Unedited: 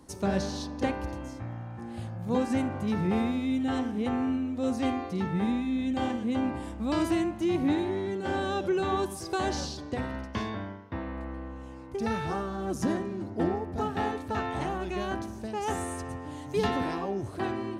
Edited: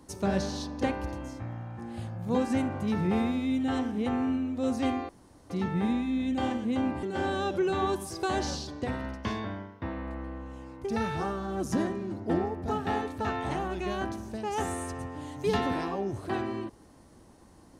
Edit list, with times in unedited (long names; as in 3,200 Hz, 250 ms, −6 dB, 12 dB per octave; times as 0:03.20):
0:05.09: splice in room tone 0.41 s
0:06.62–0:08.13: remove